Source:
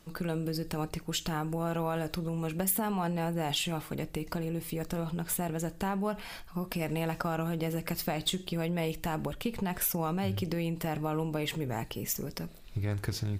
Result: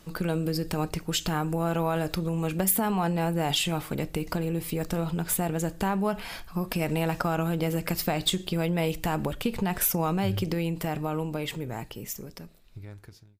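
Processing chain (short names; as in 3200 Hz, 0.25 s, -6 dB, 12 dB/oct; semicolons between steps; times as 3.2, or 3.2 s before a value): ending faded out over 3.23 s; gain +5 dB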